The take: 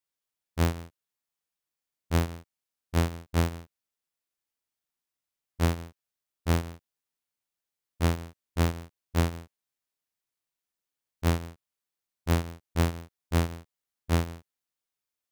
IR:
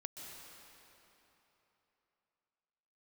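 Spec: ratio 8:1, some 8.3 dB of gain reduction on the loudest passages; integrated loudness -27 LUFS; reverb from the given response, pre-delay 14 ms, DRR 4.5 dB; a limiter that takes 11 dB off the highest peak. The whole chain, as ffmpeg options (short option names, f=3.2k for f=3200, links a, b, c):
-filter_complex "[0:a]acompressor=threshold=-28dB:ratio=8,alimiter=level_in=10dB:limit=-24dB:level=0:latency=1,volume=-10dB,asplit=2[a][b];[1:a]atrim=start_sample=2205,adelay=14[c];[b][c]afir=irnorm=-1:irlink=0,volume=-2dB[d];[a][d]amix=inputs=2:normalize=0,volume=16.5dB"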